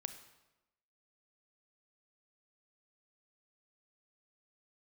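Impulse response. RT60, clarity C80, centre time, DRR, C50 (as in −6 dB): 1.0 s, 12.5 dB, 12 ms, 9.0 dB, 10.5 dB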